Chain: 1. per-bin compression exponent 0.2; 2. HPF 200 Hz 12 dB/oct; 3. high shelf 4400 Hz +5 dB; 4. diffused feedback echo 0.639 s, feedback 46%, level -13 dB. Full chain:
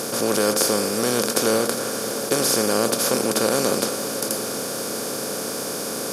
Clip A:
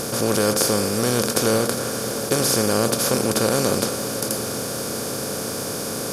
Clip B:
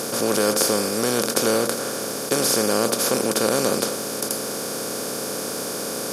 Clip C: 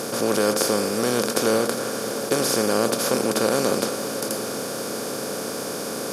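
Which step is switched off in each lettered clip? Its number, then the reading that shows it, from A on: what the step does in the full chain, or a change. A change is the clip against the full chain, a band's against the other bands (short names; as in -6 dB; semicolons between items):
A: 2, 125 Hz band +8.0 dB; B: 4, echo-to-direct -12.0 dB to none; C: 3, 8 kHz band -4.0 dB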